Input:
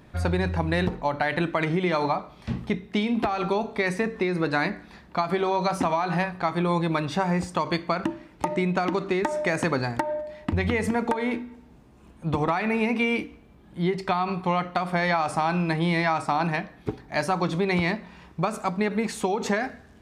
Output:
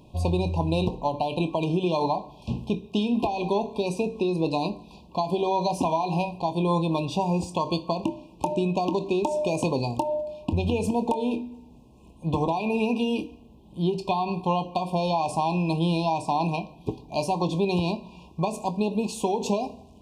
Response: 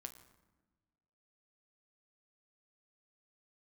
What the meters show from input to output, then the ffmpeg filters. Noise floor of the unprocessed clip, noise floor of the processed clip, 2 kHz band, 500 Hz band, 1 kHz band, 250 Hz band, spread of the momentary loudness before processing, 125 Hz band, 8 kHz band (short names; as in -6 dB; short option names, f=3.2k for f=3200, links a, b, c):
-52 dBFS, -51 dBFS, -11.0 dB, +0.5 dB, -0.5 dB, 0.0 dB, 6 LU, 0.0 dB, 0.0 dB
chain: -filter_complex "[0:a]asplit=2[a][b];[1:a]atrim=start_sample=2205,lowshelf=f=230:g=-5.5,adelay=25[c];[b][c]afir=irnorm=-1:irlink=0,volume=-7.5dB[d];[a][d]amix=inputs=2:normalize=0,afftfilt=real='re*(1-between(b*sr/4096,1100,2400))':imag='im*(1-between(b*sr/4096,1100,2400))':win_size=4096:overlap=0.75"